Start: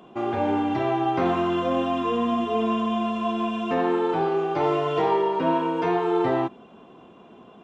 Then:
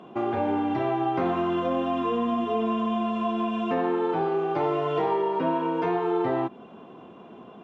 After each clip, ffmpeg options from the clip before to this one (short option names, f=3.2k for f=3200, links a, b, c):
-af "lowpass=f=2.8k:p=1,acompressor=threshold=-29dB:ratio=2,highpass=82,volume=3dB"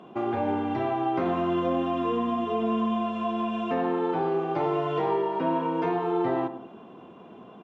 -filter_complex "[0:a]asplit=2[a][b];[b]adelay=103,lowpass=f=1.1k:p=1,volume=-10dB,asplit=2[c][d];[d]adelay=103,lowpass=f=1.1k:p=1,volume=0.46,asplit=2[e][f];[f]adelay=103,lowpass=f=1.1k:p=1,volume=0.46,asplit=2[g][h];[h]adelay=103,lowpass=f=1.1k:p=1,volume=0.46,asplit=2[i][j];[j]adelay=103,lowpass=f=1.1k:p=1,volume=0.46[k];[a][c][e][g][i][k]amix=inputs=6:normalize=0,volume=-1.5dB"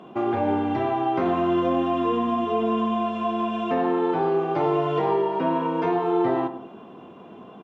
-filter_complex "[0:a]asplit=2[a][b];[b]adelay=20,volume=-13.5dB[c];[a][c]amix=inputs=2:normalize=0,volume=3dB"